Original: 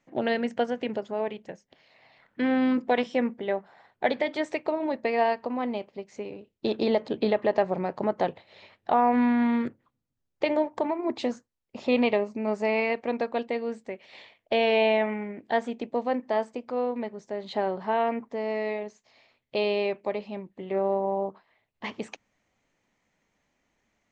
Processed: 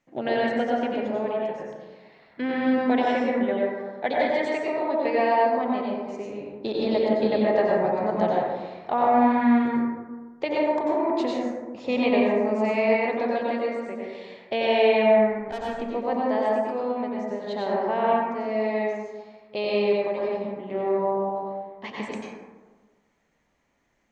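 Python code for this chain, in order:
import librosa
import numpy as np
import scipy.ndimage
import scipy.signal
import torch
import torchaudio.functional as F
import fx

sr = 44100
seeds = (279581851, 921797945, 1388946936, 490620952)

y = fx.tube_stage(x, sr, drive_db=27.0, bias=0.75, at=(15.19, 15.69))
y = fx.rev_plate(y, sr, seeds[0], rt60_s=1.4, hf_ratio=0.35, predelay_ms=80, drr_db=-4.5)
y = F.gain(torch.from_numpy(y), -2.5).numpy()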